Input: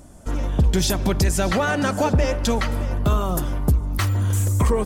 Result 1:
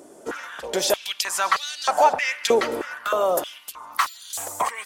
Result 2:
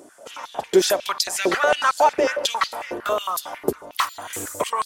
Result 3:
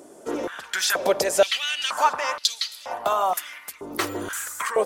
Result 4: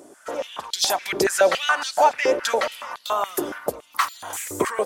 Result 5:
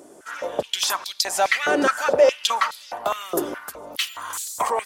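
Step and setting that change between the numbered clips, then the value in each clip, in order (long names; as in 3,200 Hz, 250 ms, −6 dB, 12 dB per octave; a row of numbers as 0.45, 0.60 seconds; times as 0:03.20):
high-pass on a step sequencer, speed: 3.2, 11, 2.1, 7.1, 4.8 Hertz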